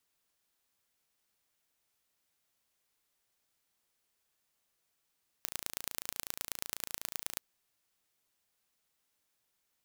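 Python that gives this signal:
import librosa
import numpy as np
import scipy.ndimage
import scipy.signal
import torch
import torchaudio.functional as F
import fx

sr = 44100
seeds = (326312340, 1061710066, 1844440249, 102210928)

y = fx.impulse_train(sr, length_s=1.95, per_s=28.1, accent_every=3, level_db=-7.0)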